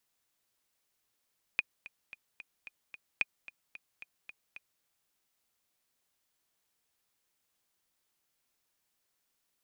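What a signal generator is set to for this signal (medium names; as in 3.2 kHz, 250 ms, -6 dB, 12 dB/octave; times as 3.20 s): metronome 222 bpm, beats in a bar 6, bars 2, 2.46 kHz, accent 18.5 dB -14.5 dBFS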